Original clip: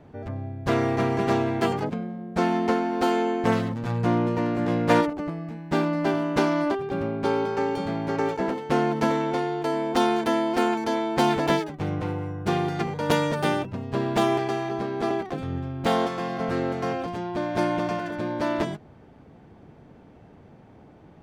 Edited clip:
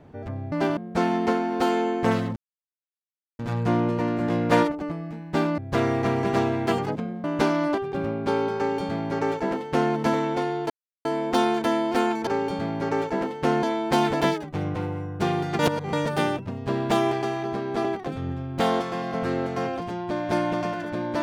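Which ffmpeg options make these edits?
ffmpeg -i in.wav -filter_complex "[0:a]asplit=11[link_01][link_02][link_03][link_04][link_05][link_06][link_07][link_08][link_09][link_10][link_11];[link_01]atrim=end=0.522[link_12];[link_02]atrim=start=5.958:end=6.212[link_13];[link_03]atrim=start=2.178:end=3.77,asetpts=PTS-STARTPTS,afade=type=out:start_time=1.588:duration=0.004:curve=hsin,apad=pad_dur=1.03[link_14];[link_04]atrim=start=3.77:end=5.962,asetpts=PTS-STARTPTS,afade=type=in:duration=0.004:curve=hsin[link_15];[link_05]atrim=start=0.518:end=2.182[link_16];[link_06]atrim=start=6.208:end=9.67,asetpts=PTS-STARTPTS,afade=type=out:start_time=3.458:duration=0.004:curve=hsin,apad=pad_dur=0.35[link_17];[link_07]atrim=start=9.67:end=10.892,asetpts=PTS-STARTPTS,afade=type=in:duration=0.004:curve=hsin[link_18];[link_08]atrim=start=7.538:end=8.902[link_19];[link_09]atrim=start=10.888:end=12.852[link_20];[link_10]atrim=start=12.848:end=13.192,asetpts=PTS-STARTPTS,areverse[link_21];[link_11]atrim=start=13.188[link_22];[link_12][link_13]acrossfade=duration=0.004:curve1=hsin:curve2=hsin[link_23];[link_14][link_15]concat=n=2:v=0:a=1[link_24];[link_23][link_24]acrossfade=duration=0.004:curve1=hsin:curve2=hsin[link_25];[link_25][link_16]acrossfade=duration=0.004:curve1=hsin:curve2=hsin[link_26];[link_17][link_18]concat=n=2:v=0:a=1[link_27];[link_26][link_27]acrossfade=duration=0.004:curve1=hsin:curve2=hsin[link_28];[link_28][link_19]acrossfade=duration=0.004:curve1=hsin:curve2=hsin[link_29];[link_29][link_20]acrossfade=duration=0.004:curve1=hsin:curve2=hsin[link_30];[link_30][link_21]acrossfade=duration=0.004:curve1=hsin:curve2=hsin[link_31];[link_31][link_22]acrossfade=duration=0.004:curve1=hsin:curve2=hsin" out.wav

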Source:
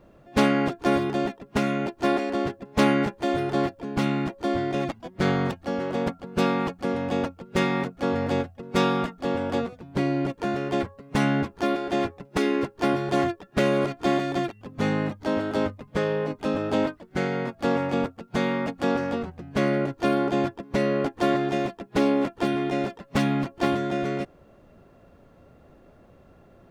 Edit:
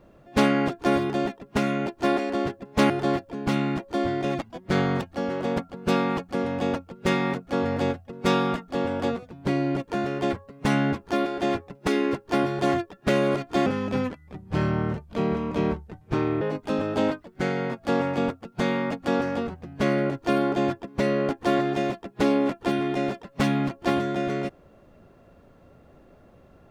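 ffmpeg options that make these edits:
ffmpeg -i in.wav -filter_complex "[0:a]asplit=4[link_01][link_02][link_03][link_04];[link_01]atrim=end=2.902[link_05];[link_02]atrim=start=3.398:end=14.164[link_06];[link_03]atrim=start=14.16:end=16.17,asetpts=PTS-STARTPTS,asetrate=32193,aresample=44100,atrim=end_sample=121426,asetpts=PTS-STARTPTS[link_07];[link_04]atrim=start=16.166[link_08];[link_05][link_06]acrossfade=duration=0.004:curve1=hsin:curve2=hsin[link_09];[link_09][link_07]acrossfade=duration=0.004:curve1=hsin:curve2=hsin[link_10];[link_10][link_08]acrossfade=duration=0.004:curve1=hsin:curve2=hsin" out.wav

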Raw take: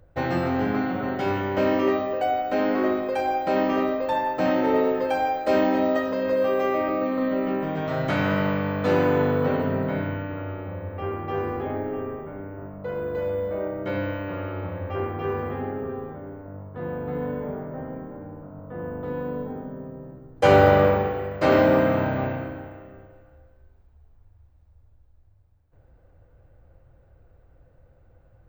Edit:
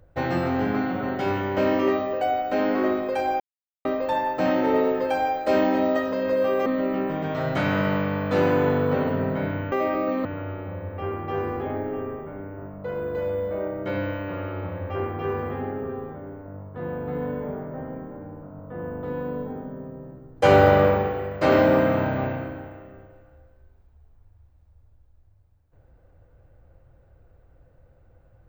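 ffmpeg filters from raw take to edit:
ffmpeg -i in.wav -filter_complex "[0:a]asplit=6[link_01][link_02][link_03][link_04][link_05][link_06];[link_01]atrim=end=3.4,asetpts=PTS-STARTPTS,afade=type=out:start_time=3.396:duration=0.004:curve=hsin[link_07];[link_02]atrim=start=3.4:end=3.85,asetpts=PTS-STARTPTS,volume=0[link_08];[link_03]atrim=start=3.85:end=6.662,asetpts=PTS-STARTPTS,afade=type=in:duration=0.004:curve=hsin[link_09];[link_04]atrim=start=7.188:end=10.252[link_10];[link_05]atrim=start=6.658:end=7.192[link_11];[link_06]atrim=start=10.248[link_12];[link_07][link_08][link_09]concat=n=3:v=0:a=1[link_13];[link_13][link_10]acrossfade=duration=0.004:curve1=hsin:curve2=hsin[link_14];[link_14][link_11]acrossfade=duration=0.004:curve1=hsin:curve2=hsin[link_15];[link_15][link_12]acrossfade=duration=0.004:curve1=hsin:curve2=hsin" out.wav

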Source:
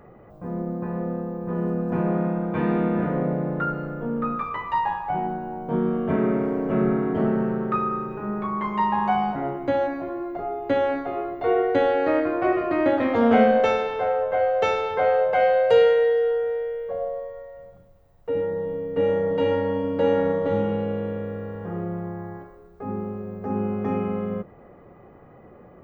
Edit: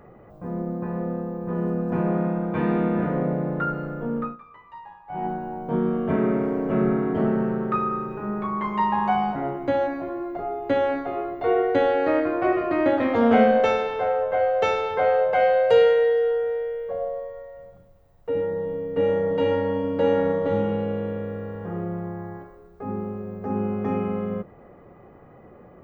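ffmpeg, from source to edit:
ffmpeg -i in.wav -filter_complex "[0:a]asplit=3[link_01][link_02][link_03];[link_01]atrim=end=4.37,asetpts=PTS-STARTPTS,afade=type=out:start_time=4.18:duration=0.19:silence=0.11885[link_04];[link_02]atrim=start=4.37:end=5.07,asetpts=PTS-STARTPTS,volume=-18.5dB[link_05];[link_03]atrim=start=5.07,asetpts=PTS-STARTPTS,afade=type=in:duration=0.19:silence=0.11885[link_06];[link_04][link_05][link_06]concat=n=3:v=0:a=1" out.wav

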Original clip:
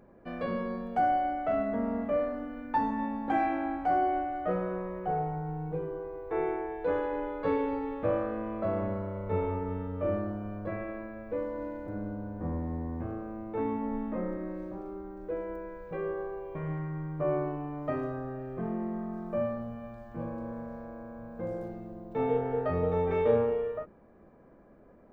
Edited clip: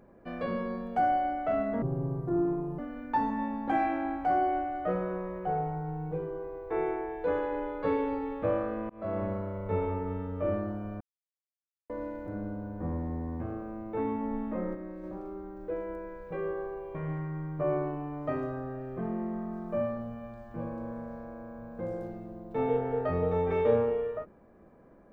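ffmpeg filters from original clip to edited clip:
ffmpeg -i in.wav -filter_complex "[0:a]asplit=8[link_01][link_02][link_03][link_04][link_05][link_06][link_07][link_08];[link_01]atrim=end=1.824[link_09];[link_02]atrim=start=1.82:end=2.39,asetpts=PTS-STARTPTS,asetrate=26019,aresample=44100,atrim=end_sample=42605,asetpts=PTS-STARTPTS[link_10];[link_03]atrim=start=2.386:end=8.5,asetpts=PTS-STARTPTS,afade=type=out:start_time=6.11:duration=0.004:curve=hsin[link_11];[link_04]atrim=start=8.5:end=10.61,asetpts=PTS-STARTPTS,afade=type=in:duration=0.4:curve=qsin,afade=type=out:start_time=2.106:duration=0.004:curve=hsin[link_12];[link_05]atrim=start=10.61:end=11.5,asetpts=PTS-STARTPTS,volume=0[link_13];[link_06]atrim=start=11.5:end=14.352,asetpts=PTS-STARTPTS,afade=type=in:duration=0.004:curve=hsin[link_14];[link_07]atrim=start=14.348:end=14.642,asetpts=PTS-STARTPTS,volume=-4dB[link_15];[link_08]atrim=start=14.638[link_16];[link_09][link_10]acrossfade=duration=0.004:curve1=hsin:curve2=hsin[link_17];[link_11][link_12][link_13][link_14]concat=n=4:v=0:a=1[link_18];[link_17][link_18]acrossfade=duration=0.004:curve1=hsin:curve2=hsin[link_19];[link_19][link_15]acrossfade=duration=0.004:curve1=hsin:curve2=hsin[link_20];[link_20][link_16]acrossfade=duration=0.004:curve1=hsin:curve2=hsin" out.wav

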